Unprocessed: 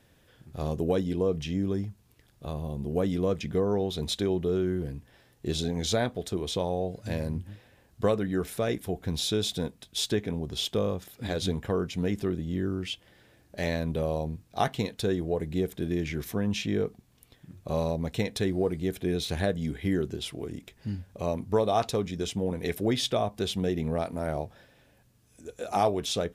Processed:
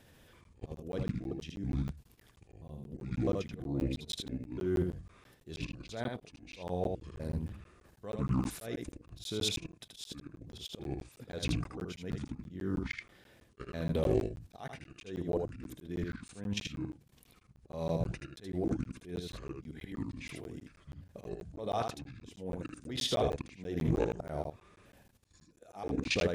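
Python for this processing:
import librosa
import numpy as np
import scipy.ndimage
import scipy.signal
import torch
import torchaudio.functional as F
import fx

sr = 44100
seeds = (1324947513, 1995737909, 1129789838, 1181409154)

p1 = fx.pitch_trill(x, sr, semitones=-6.5, every_ms=327)
p2 = fx.level_steps(p1, sr, step_db=16)
p3 = fx.auto_swell(p2, sr, attack_ms=322.0)
p4 = p3 + fx.echo_single(p3, sr, ms=79, db=-4.5, dry=0)
p5 = fx.buffer_crackle(p4, sr, first_s=0.44, period_s=0.16, block=512, kind='zero')
p6 = fx.doppler_dist(p5, sr, depth_ms=0.19)
y = F.gain(torch.from_numpy(p6), 2.5).numpy()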